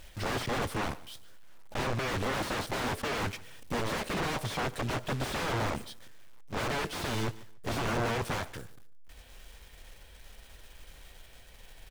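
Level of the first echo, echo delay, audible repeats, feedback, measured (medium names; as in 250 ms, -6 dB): -20.5 dB, 145 ms, 2, 24%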